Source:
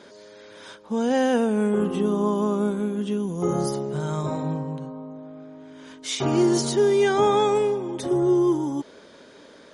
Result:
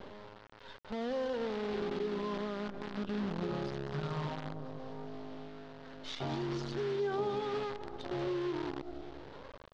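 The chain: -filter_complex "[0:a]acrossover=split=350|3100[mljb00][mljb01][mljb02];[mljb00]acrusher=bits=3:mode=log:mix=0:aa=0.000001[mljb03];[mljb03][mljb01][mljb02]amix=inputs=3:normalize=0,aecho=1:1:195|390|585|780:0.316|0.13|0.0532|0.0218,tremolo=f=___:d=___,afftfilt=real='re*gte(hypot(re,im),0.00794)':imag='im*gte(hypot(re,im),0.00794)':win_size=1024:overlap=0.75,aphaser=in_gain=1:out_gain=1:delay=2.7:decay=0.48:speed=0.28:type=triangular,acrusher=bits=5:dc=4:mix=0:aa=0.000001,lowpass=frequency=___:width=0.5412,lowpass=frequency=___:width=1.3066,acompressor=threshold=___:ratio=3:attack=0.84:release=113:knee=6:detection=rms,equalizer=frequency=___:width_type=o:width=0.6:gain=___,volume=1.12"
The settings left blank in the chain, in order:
0.96, 0.43, 4300, 4300, 0.0126, 2400, -4.5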